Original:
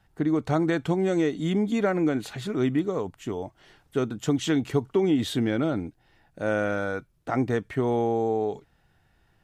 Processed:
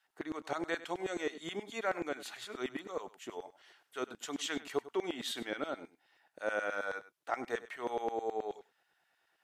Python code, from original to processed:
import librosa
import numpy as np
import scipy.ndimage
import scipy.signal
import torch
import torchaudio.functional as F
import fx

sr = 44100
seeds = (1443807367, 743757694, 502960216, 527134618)

y = fx.filter_lfo_highpass(x, sr, shape='saw_down', hz=9.4, low_hz=370.0, high_hz=1900.0, q=0.78)
y = y + 10.0 ** (-16.5 / 20.0) * np.pad(y, (int(99 * sr / 1000.0), 0))[:len(y)]
y = y * 10.0 ** (-5.0 / 20.0)